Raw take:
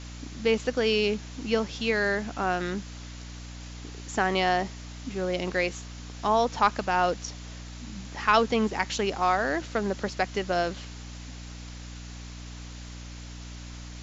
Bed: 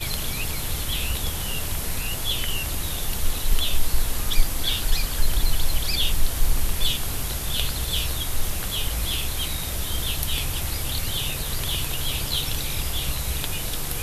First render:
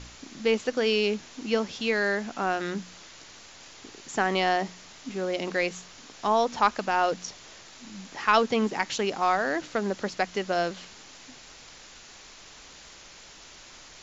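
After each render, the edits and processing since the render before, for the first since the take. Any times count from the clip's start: de-hum 60 Hz, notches 5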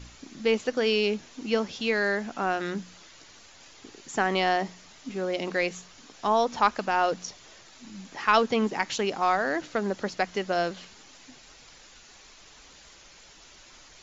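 noise reduction 6 dB, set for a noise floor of -49 dBFS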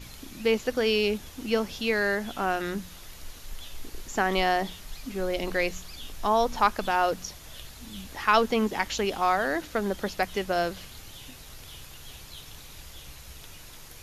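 add bed -19.5 dB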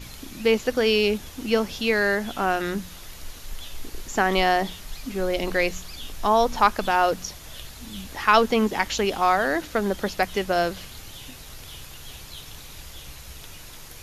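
trim +4 dB

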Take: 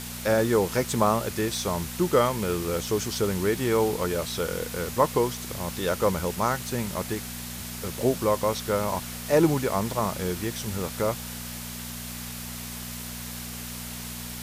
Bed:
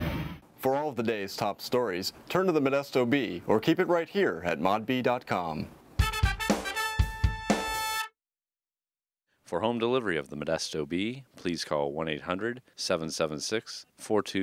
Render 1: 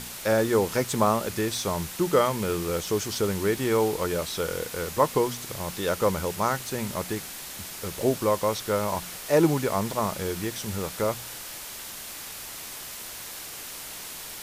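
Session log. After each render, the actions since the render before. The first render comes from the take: de-hum 60 Hz, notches 4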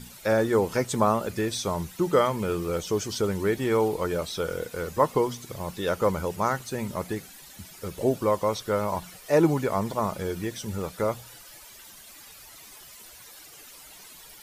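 noise reduction 13 dB, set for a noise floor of -39 dBFS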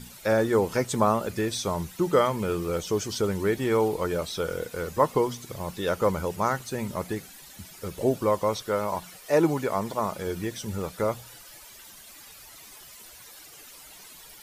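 8.62–10.27 s: bass shelf 170 Hz -7 dB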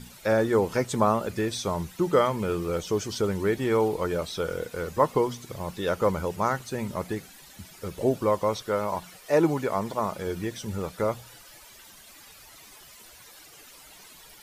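treble shelf 6.2 kHz -4.5 dB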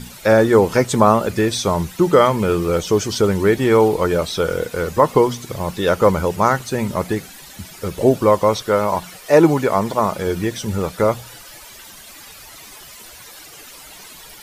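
trim +10 dB; peak limiter -1 dBFS, peak gain reduction 3 dB

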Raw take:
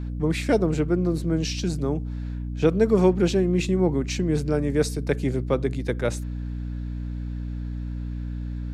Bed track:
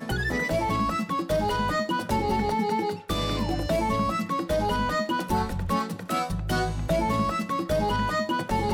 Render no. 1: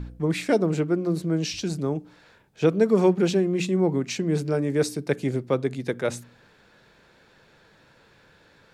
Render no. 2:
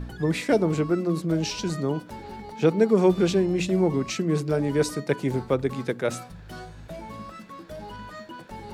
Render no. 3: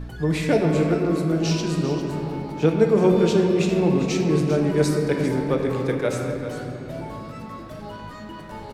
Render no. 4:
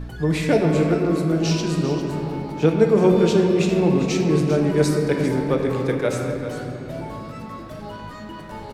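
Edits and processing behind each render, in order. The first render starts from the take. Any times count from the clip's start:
de-hum 60 Hz, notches 5
add bed track -14 dB
on a send: delay 397 ms -11.5 dB; on the sum: simulated room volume 210 m³, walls hard, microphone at 0.4 m
trim +1.5 dB

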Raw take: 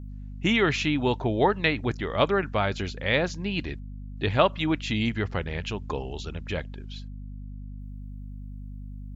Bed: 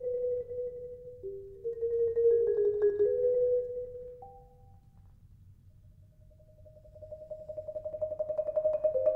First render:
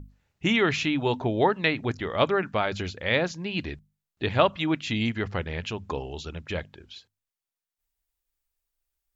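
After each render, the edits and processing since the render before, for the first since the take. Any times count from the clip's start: hum notches 50/100/150/200/250 Hz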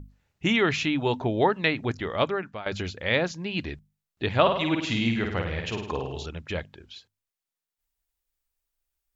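2.09–2.66 s: fade out, to -15.5 dB; 4.41–6.26 s: flutter echo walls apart 9 m, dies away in 0.65 s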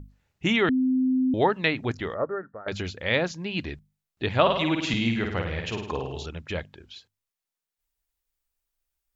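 0.69–1.34 s: bleep 258 Hz -19.5 dBFS; 2.14–2.68 s: rippled Chebyshev low-pass 1.9 kHz, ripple 9 dB; 4.50–4.94 s: three bands compressed up and down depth 100%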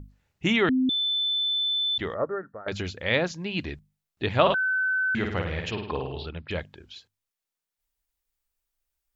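0.89–1.98 s: bleep 3.52 kHz -23 dBFS; 4.54–5.15 s: bleep 1.52 kHz -22 dBFS; 5.71–6.51 s: steep low-pass 4.9 kHz 96 dB/octave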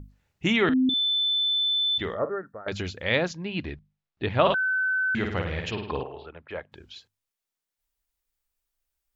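0.56–2.30 s: doubling 46 ms -12 dB; 3.33–4.45 s: distance through air 170 m; 6.03–6.72 s: three-band isolator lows -14 dB, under 390 Hz, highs -20 dB, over 2.1 kHz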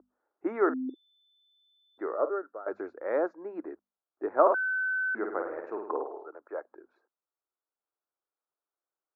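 elliptic band-pass 320–1400 Hz, stop band 40 dB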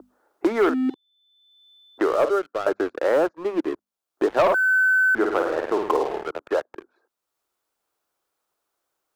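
waveshaping leveller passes 3; three bands compressed up and down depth 70%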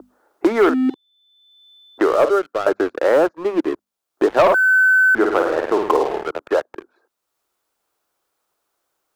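trim +5 dB

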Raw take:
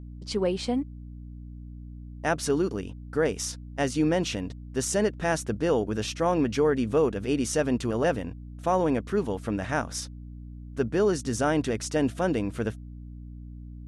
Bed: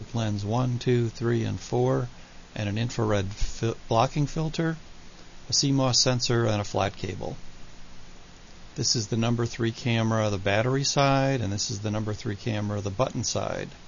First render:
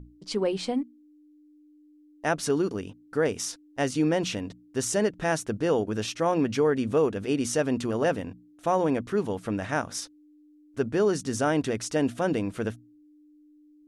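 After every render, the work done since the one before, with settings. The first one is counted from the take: hum notches 60/120/180/240 Hz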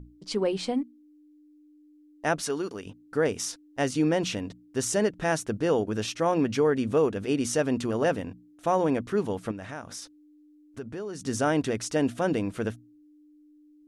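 2.42–2.86 s: bass shelf 340 Hz -11.5 dB; 9.51–11.21 s: compression 2.5:1, threshold -38 dBFS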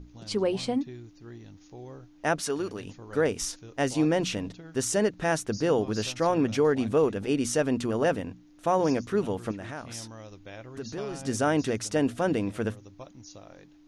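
add bed -20 dB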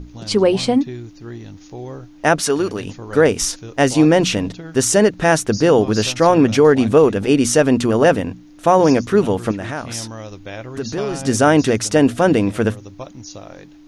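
trim +12 dB; peak limiter -2 dBFS, peak gain reduction 2 dB

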